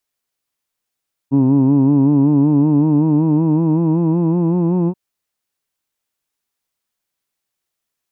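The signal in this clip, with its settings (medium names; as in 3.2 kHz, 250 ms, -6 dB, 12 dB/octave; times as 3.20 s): formant vowel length 3.63 s, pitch 133 Hz, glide +5 st, vibrato depth 0.8 st, F1 280 Hz, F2 950 Hz, F3 2.6 kHz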